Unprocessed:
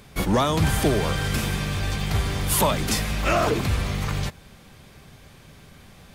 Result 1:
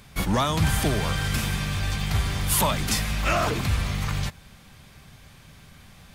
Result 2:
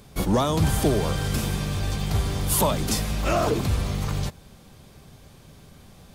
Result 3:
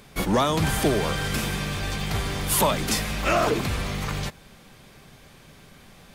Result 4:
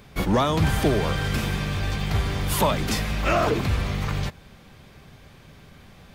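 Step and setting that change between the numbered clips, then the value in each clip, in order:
parametric band, centre frequency: 410, 2,000, 76, 9,900 Hertz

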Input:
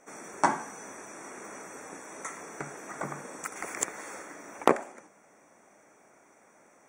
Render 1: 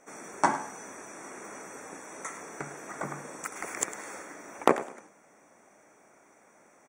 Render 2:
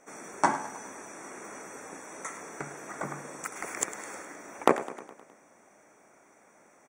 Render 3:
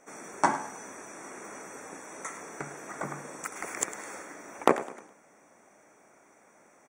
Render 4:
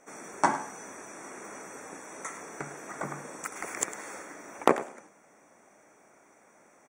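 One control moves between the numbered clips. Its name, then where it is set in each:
repeating echo, feedback: 27, 60, 40, 15%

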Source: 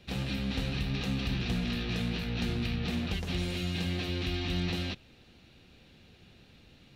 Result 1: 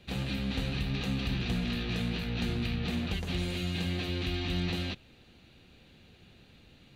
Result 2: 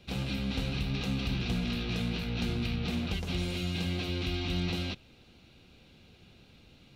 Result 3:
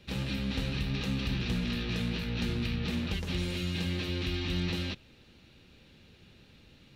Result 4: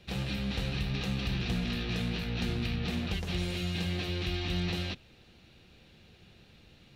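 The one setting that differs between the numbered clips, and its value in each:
notch filter, centre frequency: 5,400, 1,800, 720, 260 Hertz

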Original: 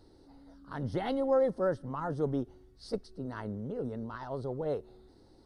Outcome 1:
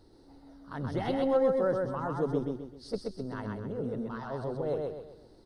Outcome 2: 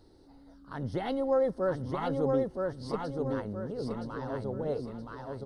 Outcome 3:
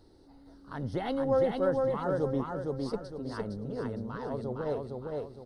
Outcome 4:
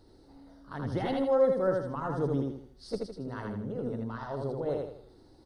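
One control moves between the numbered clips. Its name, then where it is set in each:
repeating echo, delay time: 129, 971, 460, 80 milliseconds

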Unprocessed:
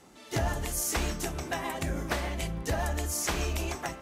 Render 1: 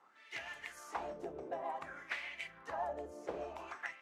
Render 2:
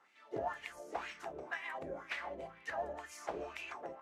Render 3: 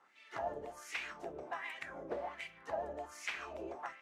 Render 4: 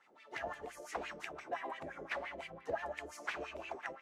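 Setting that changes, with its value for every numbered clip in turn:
LFO wah, speed: 0.55, 2, 1.3, 5.8 Hertz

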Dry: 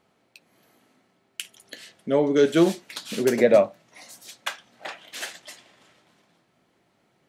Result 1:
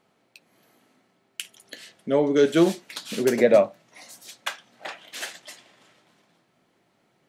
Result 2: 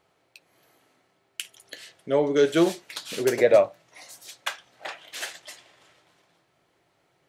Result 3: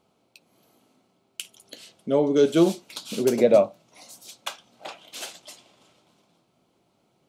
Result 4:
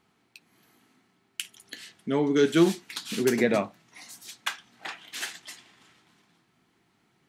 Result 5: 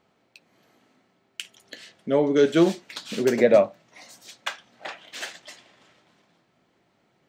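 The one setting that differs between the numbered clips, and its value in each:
parametric band, centre frequency: 66, 220, 1,800, 570, 11,000 Hertz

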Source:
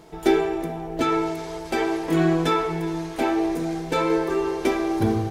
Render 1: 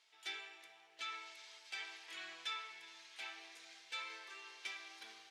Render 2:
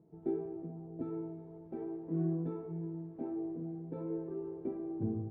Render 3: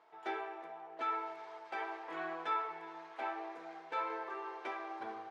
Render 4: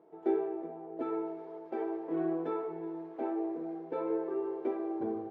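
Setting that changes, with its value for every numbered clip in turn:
four-pole ladder band-pass, frequency: 3,700, 180, 1,300, 500 Hertz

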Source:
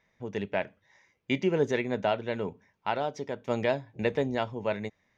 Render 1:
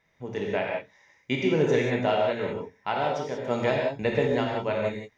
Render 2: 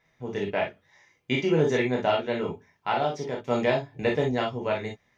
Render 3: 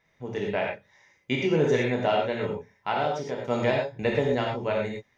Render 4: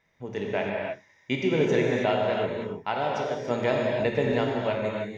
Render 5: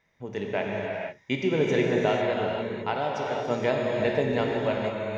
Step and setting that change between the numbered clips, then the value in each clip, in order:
reverb whose tail is shaped and stops, gate: 210, 80, 140, 340, 520 milliseconds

